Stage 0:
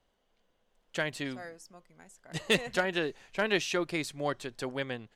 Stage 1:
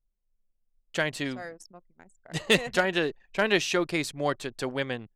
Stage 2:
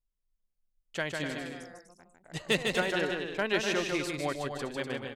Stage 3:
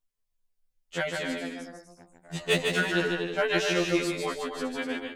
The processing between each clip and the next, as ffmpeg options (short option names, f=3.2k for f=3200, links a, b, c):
-af "anlmdn=0.00398,volume=4.5dB"
-af "aecho=1:1:150|247.5|310.9|352.1|378.8:0.631|0.398|0.251|0.158|0.1,volume=-6dB"
-af "afftfilt=real='re*2*eq(mod(b,4),0)':imag='im*2*eq(mod(b,4),0)':win_size=2048:overlap=0.75,volume=5.5dB"